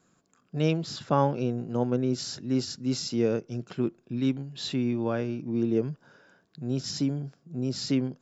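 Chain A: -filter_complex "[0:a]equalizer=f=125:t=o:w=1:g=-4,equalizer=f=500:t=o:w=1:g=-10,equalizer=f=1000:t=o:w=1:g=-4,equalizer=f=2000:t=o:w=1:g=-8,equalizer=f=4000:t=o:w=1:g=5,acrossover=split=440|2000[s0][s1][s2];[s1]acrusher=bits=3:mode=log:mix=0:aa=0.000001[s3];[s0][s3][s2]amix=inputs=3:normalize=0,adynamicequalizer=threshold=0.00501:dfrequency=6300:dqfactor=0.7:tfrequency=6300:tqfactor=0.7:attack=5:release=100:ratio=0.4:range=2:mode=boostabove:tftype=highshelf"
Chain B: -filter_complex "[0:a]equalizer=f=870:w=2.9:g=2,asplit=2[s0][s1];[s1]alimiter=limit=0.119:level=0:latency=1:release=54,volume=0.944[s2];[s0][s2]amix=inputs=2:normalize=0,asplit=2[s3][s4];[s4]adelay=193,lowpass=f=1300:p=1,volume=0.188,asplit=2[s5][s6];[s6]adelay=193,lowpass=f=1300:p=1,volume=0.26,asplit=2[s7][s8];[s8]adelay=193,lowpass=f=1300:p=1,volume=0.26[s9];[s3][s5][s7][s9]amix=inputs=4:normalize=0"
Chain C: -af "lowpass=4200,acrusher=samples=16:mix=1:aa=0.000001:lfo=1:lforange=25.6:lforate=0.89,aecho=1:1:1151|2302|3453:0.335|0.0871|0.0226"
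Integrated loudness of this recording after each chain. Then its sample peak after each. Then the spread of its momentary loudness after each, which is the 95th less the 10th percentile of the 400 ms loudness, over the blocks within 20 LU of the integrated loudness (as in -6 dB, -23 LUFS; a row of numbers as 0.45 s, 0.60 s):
-32.5 LUFS, -24.0 LUFS, -29.0 LUFS; -18.0 dBFS, -6.5 dBFS, -9.5 dBFS; 8 LU, 7 LU, 9 LU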